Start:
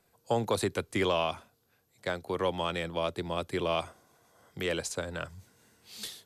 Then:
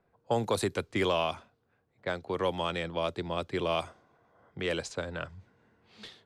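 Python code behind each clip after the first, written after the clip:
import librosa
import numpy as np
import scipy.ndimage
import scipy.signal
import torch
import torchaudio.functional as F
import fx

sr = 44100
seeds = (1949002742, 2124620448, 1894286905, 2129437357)

y = fx.env_lowpass(x, sr, base_hz=1600.0, full_db=-24.5)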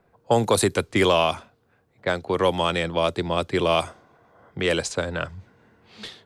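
y = fx.dynamic_eq(x, sr, hz=9600.0, q=1.1, threshold_db=-58.0, ratio=4.0, max_db=6)
y = F.gain(torch.from_numpy(y), 9.0).numpy()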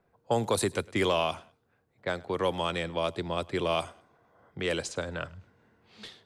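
y = fx.echo_feedback(x, sr, ms=104, feedback_pct=28, wet_db=-23.5)
y = F.gain(torch.from_numpy(y), -7.5).numpy()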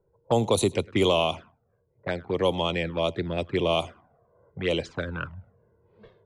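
y = fx.env_lowpass(x, sr, base_hz=580.0, full_db=-22.5)
y = fx.env_flanger(y, sr, rest_ms=2.1, full_db=-25.5)
y = F.gain(torch.from_numpy(y), 6.0).numpy()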